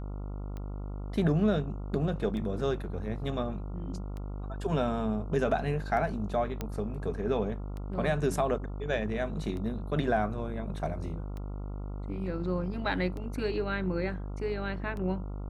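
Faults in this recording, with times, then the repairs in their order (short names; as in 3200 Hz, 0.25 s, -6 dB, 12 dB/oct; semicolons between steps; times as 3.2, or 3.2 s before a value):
buzz 50 Hz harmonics 28 -37 dBFS
tick 33 1/3 rpm -28 dBFS
6.61 pop -19 dBFS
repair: de-click; de-hum 50 Hz, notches 28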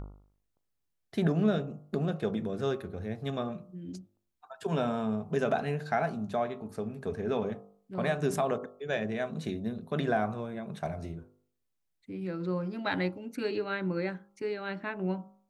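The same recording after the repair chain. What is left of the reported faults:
none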